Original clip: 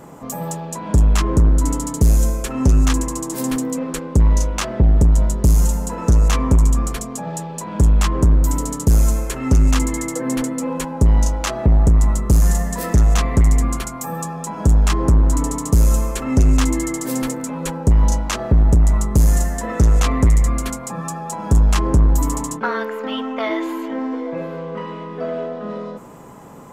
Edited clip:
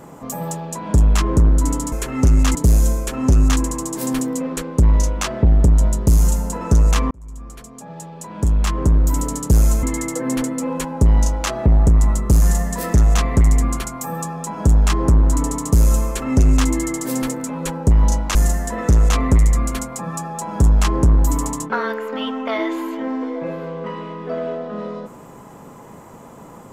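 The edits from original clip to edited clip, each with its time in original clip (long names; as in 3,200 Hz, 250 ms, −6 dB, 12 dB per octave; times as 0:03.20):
0:06.48–0:08.58: fade in
0:09.20–0:09.83: move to 0:01.92
0:18.35–0:19.26: remove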